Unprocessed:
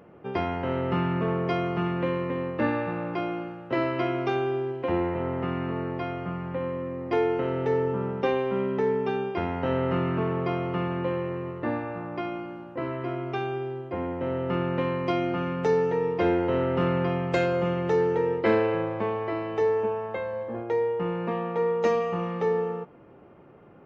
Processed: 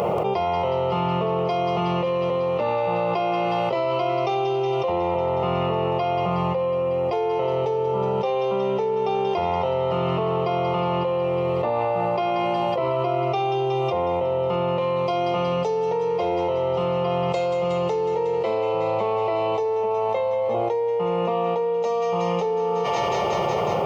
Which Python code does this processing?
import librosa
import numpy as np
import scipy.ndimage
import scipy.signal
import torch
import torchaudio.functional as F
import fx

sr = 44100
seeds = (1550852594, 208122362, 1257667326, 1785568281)

p1 = fx.highpass(x, sr, hz=260.0, slope=6)
p2 = fx.fixed_phaser(p1, sr, hz=680.0, stages=4)
p3 = p2 + fx.echo_wet_highpass(p2, sr, ms=183, feedback_pct=73, hz=1400.0, wet_db=-9.0, dry=0)
p4 = fx.env_flatten(p3, sr, amount_pct=100)
y = p4 * librosa.db_to_amplitude(1.0)